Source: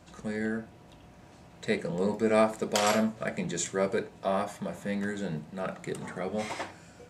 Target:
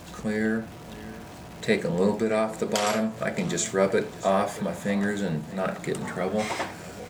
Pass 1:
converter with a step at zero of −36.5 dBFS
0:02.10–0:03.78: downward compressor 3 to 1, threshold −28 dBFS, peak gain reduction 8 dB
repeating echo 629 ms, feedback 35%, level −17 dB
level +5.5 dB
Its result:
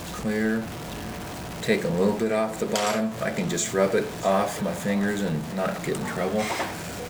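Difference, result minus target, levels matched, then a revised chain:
converter with a step at zero: distortion +11 dB
converter with a step at zero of −48 dBFS
0:02.10–0:03.78: downward compressor 3 to 1, threshold −28 dBFS, peak gain reduction 8 dB
repeating echo 629 ms, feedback 35%, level −17 dB
level +5.5 dB

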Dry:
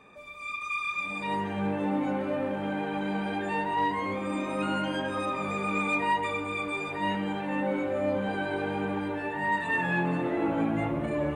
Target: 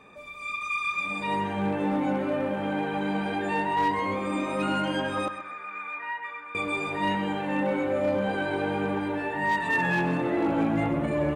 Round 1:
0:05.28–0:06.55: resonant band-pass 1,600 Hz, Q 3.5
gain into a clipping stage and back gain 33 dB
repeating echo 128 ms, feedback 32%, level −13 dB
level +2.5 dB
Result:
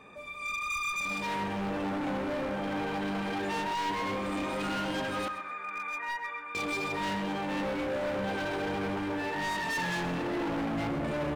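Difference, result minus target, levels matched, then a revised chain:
gain into a clipping stage and back: distortion +19 dB
0:05.28–0:06.55: resonant band-pass 1,600 Hz, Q 3.5
gain into a clipping stage and back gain 21.5 dB
repeating echo 128 ms, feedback 32%, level −13 dB
level +2.5 dB

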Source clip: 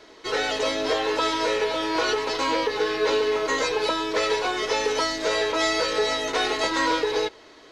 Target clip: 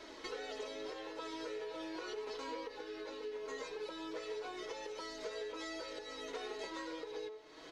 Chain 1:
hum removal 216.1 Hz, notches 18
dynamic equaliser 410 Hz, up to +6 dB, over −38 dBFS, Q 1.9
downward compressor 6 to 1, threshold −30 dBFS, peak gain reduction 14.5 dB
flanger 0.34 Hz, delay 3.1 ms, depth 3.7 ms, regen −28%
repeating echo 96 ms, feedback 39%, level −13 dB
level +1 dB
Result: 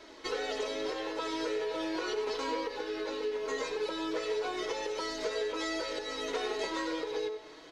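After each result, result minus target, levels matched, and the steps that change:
downward compressor: peak gain reduction −9 dB; echo-to-direct +7 dB
change: downward compressor 6 to 1, threshold −41 dBFS, peak gain reduction 24 dB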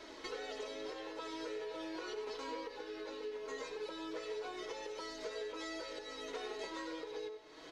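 echo-to-direct +7 dB
change: repeating echo 96 ms, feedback 39%, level −20 dB

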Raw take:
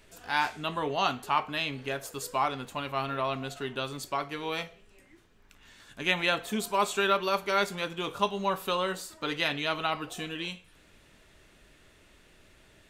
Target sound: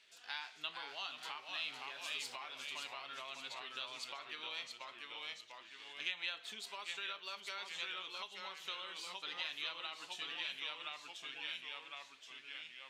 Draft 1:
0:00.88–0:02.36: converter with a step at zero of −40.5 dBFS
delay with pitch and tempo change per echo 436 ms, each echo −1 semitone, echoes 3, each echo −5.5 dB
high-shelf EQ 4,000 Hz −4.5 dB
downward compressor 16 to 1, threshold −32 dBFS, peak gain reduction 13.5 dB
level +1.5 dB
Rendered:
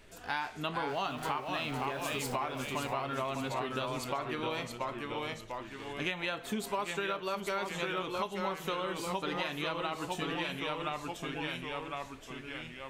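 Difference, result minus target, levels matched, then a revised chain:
4,000 Hz band −7.0 dB
0:00.88–0:02.36: converter with a step at zero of −40.5 dBFS
delay with pitch and tempo change per echo 436 ms, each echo −1 semitone, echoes 3, each echo −5.5 dB
high-shelf EQ 4,000 Hz −4.5 dB
downward compressor 16 to 1, threshold −32 dBFS, peak gain reduction 13.5 dB
resonant band-pass 3,800 Hz, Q 1.4
level +1.5 dB

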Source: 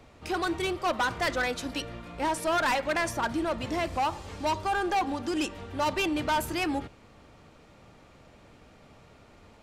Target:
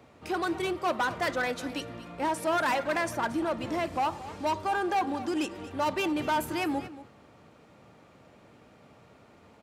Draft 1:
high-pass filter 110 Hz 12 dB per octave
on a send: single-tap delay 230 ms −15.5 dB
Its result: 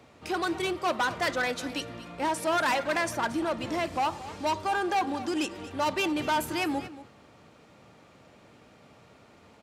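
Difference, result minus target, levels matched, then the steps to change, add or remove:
4,000 Hz band +3.0 dB
add after high-pass filter: parametric band 5,200 Hz −4.5 dB 2.5 octaves

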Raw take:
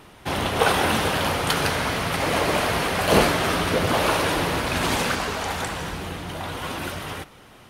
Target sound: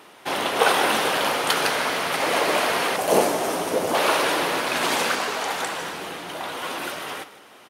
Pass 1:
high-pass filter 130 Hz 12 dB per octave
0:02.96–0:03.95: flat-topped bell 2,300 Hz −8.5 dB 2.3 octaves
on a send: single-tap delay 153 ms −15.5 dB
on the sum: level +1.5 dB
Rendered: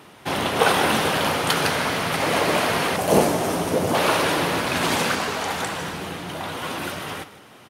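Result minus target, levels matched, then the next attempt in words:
125 Hz band +11.0 dB
high-pass filter 330 Hz 12 dB per octave
0:02.96–0:03.95: flat-topped bell 2,300 Hz −8.5 dB 2.3 octaves
on a send: single-tap delay 153 ms −15.5 dB
on the sum: level +1.5 dB

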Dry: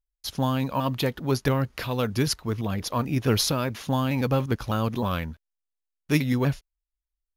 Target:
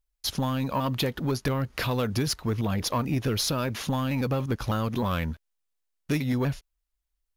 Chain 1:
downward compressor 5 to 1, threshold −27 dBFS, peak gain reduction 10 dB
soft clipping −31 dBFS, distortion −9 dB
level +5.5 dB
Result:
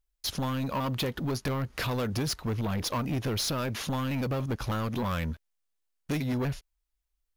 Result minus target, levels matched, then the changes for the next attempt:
soft clipping: distortion +8 dB
change: soft clipping −23.5 dBFS, distortion −17 dB

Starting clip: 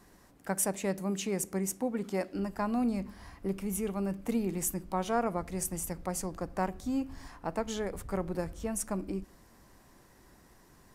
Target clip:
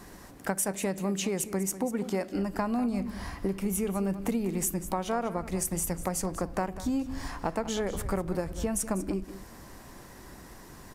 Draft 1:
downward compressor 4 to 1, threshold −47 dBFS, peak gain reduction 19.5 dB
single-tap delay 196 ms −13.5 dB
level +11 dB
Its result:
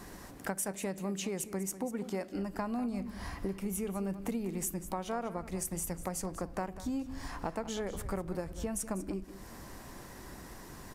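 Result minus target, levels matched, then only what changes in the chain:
downward compressor: peak gain reduction +6 dB
change: downward compressor 4 to 1, threshold −39 dBFS, peak gain reduction 13.5 dB

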